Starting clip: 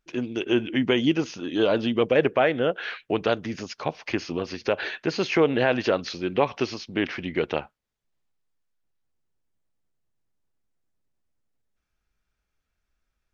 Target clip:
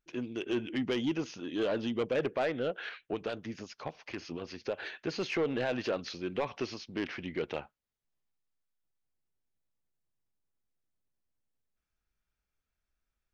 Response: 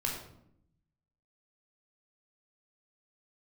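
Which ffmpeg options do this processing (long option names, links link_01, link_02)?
-filter_complex "[0:a]asoftclip=type=tanh:threshold=-16dB,asettb=1/sr,asplit=3[link_01][link_02][link_03];[link_01]atrim=end=2.894[link_04];[link_02]atrim=start=2.89:end=5.03,asetpts=PTS-STARTPTS,afade=type=in:duration=0.004:curve=qsin,afade=type=out:start_time=2.136:duration=0.004:curve=qsin,acrossover=split=1400[link_05][link_06];[link_05]aeval=exprs='val(0)*(1-0.5/2+0.5/2*cos(2*PI*8.3*n/s))':channel_layout=same[link_07];[link_06]aeval=exprs='val(0)*(1-0.5/2-0.5/2*cos(2*PI*8.3*n/s))':channel_layout=same[link_08];[link_07][link_08]amix=inputs=2:normalize=0[link_09];[link_03]atrim=start=5.026[link_10];[link_04][link_09]acrossfade=duration=0.004:curve1=hsin:curve2=qsin[link_11];[link_11][link_10]acrossfade=duration=0.004:curve1=qsin:curve2=hsin,volume=-7.5dB"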